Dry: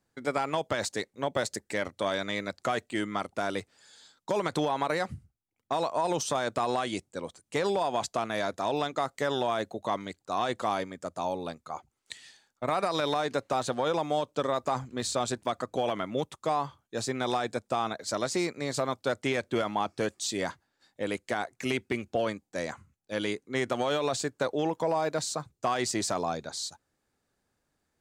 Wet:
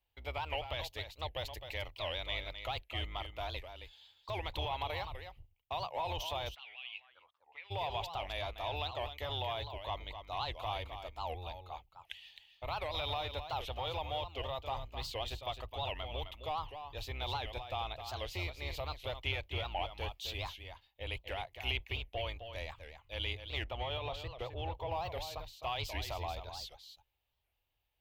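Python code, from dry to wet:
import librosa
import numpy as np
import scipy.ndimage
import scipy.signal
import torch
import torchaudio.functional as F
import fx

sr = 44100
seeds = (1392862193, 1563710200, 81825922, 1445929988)

y = fx.octave_divider(x, sr, octaves=2, level_db=2.0)
y = 10.0 ** (-17.0 / 20.0) * np.tanh(y / 10.0 ** (-17.0 / 20.0))
y = fx.curve_eq(y, sr, hz=(100.0, 200.0, 880.0, 1500.0, 2900.0, 4700.0, 8500.0, 13000.0), db=(0, -19, 2, -10, 13, -4, -18, 9))
y = y + 10.0 ** (-9.0 / 20.0) * np.pad(y, (int(260 * sr / 1000.0), 0))[:len(y)]
y = fx.auto_wah(y, sr, base_hz=750.0, top_hz=2700.0, q=5.8, full_db=-26.0, direction='up', at=(6.54, 7.7), fade=0.02)
y = fx.high_shelf(y, sr, hz=3900.0, db=-11.0, at=(23.64, 24.92))
y = fx.record_warp(y, sr, rpm=78.0, depth_cents=250.0)
y = F.gain(torch.from_numpy(y), -7.5).numpy()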